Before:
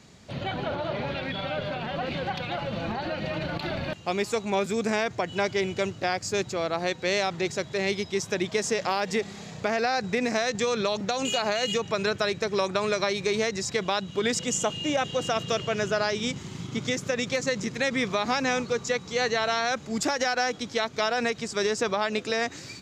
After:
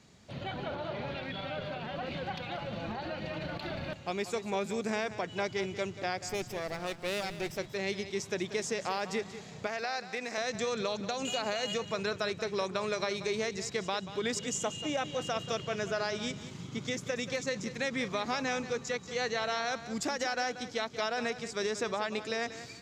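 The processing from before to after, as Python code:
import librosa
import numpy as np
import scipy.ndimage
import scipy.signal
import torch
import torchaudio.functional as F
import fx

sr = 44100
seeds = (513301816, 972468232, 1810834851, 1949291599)

y = fx.lower_of_two(x, sr, delay_ms=0.37, at=(6.29, 7.58))
y = fx.highpass(y, sr, hz=720.0, slope=6, at=(9.67, 10.38))
y = fx.echo_feedback(y, sr, ms=185, feedback_pct=28, wet_db=-13)
y = y * librosa.db_to_amplitude(-7.0)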